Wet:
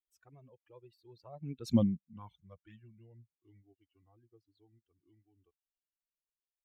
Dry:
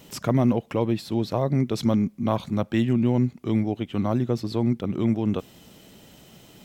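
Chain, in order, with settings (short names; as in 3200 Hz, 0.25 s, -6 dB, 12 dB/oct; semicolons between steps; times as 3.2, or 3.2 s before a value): per-bin expansion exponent 2; Doppler pass-by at 1.77, 22 m/s, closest 1.2 m; envelope flanger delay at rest 2.9 ms, full sweep at -33 dBFS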